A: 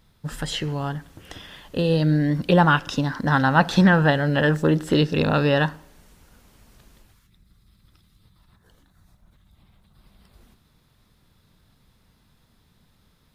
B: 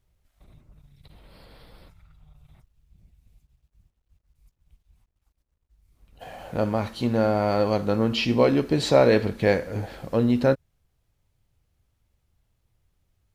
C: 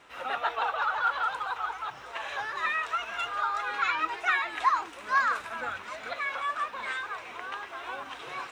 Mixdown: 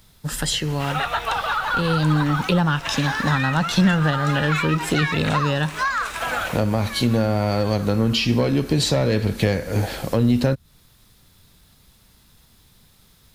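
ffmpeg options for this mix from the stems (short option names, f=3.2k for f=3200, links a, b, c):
-filter_complex "[0:a]volume=-4dB[a];[1:a]volume=2dB,asplit=2[b][c];[2:a]adelay=700,volume=2dB[d];[c]apad=whole_len=406600[e];[d][e]sidechaincompress=threshold=-30dB:ratio=8:attack=16:release=1040[f];[a][b][f]amix=inputs=3:normalize=0,acontrast=81,highshelf=f=3.3k:g=11,acrossover=split=180[g][h];[h]acompressor=threshold=-20dB:ratio=6[i];[g][i]amix=inputs=2:normalize=0"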